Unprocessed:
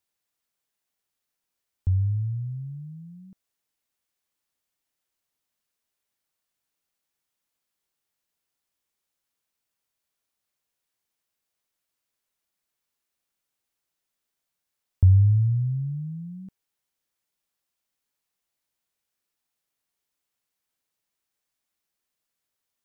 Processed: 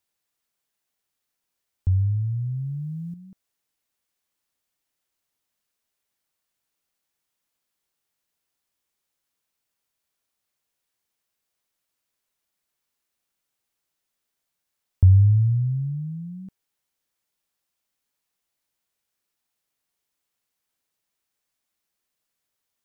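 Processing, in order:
0:02.24–0:03.14: envelope flattener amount 50%
level +2 dB

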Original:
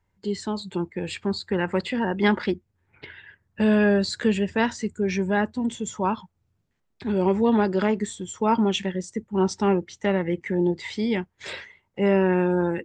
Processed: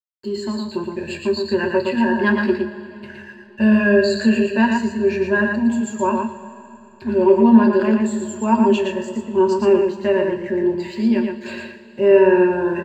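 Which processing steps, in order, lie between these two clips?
EQ curve with evenly spaced ripples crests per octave 1.4, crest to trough 15 dB
slack as between gear wheels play −44.5 dBFS
high-shelf EQ 5,500 Hz −9.5 dB
on a send: single-tap delay 116 ms −4.5 dB
on the sum: coupled-rooms reverb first 0.23 s, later 3.3 s, from −18 dB, DRR 3.5 dB
level −1 dB

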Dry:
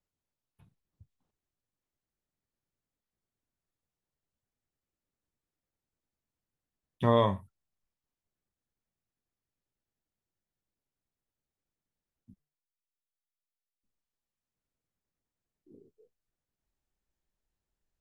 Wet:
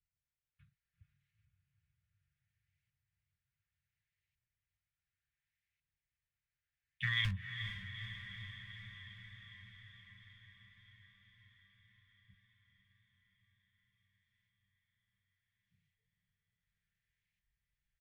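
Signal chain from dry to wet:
low-shelf EQ 120 Hz +11 dB
auto-filter band-pass saw up 0.69 Hz 710–2,300 Hz
tilt shelving filter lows +6.5 dB, about 1,300 Hz
comb filter 5 ms, depth 44%
in parallel at −9 dB: asymmetric clip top −32 dBFS, bottom −20.5 dBFS
on the sum: inverse Chebyshev band-stop filter 260–950 Hz, stop band 50 dB
on a send: feedback delay with all-pass diffusion 456 ms, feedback 72%, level −8.5 dB
on the sum: level +13.5 dB

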